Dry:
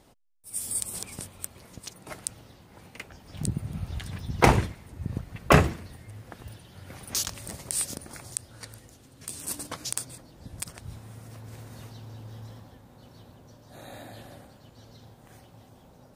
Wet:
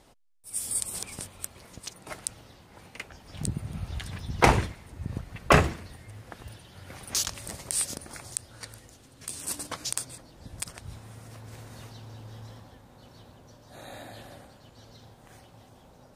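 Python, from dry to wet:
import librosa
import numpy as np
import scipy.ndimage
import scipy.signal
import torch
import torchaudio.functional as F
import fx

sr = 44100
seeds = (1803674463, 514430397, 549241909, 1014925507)

p1 = scipy.signal.sosfilt(scipy.signal.bessel(2, 12000.0, 'lowpass', norm='mag', fs=sr, output='sos'), x)
p2 = fx.low_shelf(p1, sr, hz=70.0, db=8.5)
p3 = 10.0 ** (-19.0 / 20.0) * np.tanh(p2 / 10.0 ** (-19.0 / 20.0))
p4 = p2 + (p3 * librosa.db_to_amplitude(-11.5))
y = fx.low_shelf(p4, sr, hz=320.0, db=-7.0)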